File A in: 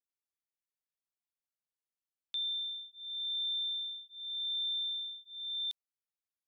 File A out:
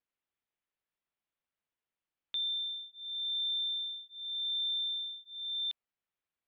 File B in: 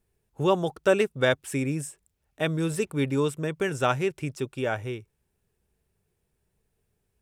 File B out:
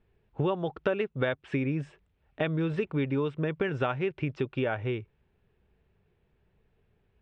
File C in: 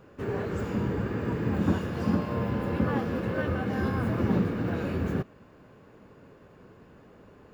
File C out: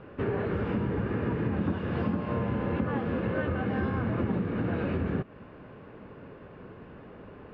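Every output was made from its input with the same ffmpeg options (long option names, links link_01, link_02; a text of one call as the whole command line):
ffmpeg -i in.wav -af "lowpass=frequency=3300:width=0.5412,lowpass=frequency=3300:width=1.3066,acompressor=threshold=-32dB:ratio=6,volume=6dB" out.wav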